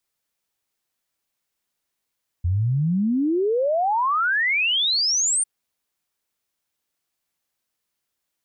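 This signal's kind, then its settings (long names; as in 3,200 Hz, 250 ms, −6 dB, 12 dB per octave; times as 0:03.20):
exponential sine sweep 83 Hz → 9,200 Hz 3.00 s −18 dBFS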